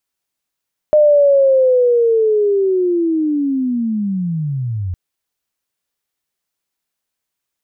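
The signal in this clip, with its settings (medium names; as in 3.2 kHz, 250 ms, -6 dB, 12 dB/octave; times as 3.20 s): sweep linear 610 Hz -> 86 Hz -6.5 dBFS -> -18.5 dBFS 4.01 s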